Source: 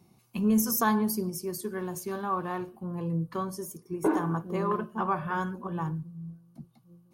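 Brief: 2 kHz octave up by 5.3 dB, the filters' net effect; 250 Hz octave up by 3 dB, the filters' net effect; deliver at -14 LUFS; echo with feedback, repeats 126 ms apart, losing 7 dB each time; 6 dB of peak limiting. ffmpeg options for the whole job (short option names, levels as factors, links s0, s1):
-af "equalizer=f=250:t=o:g=4,equalizer=f=2000:t=o:g=7.5,alimiter=limit=0.119:level=0:latency=1,aecho=1:1:126|252|378|504|630:0.447|0.201|0.0905|0.0407|0.0183,volume=5.62"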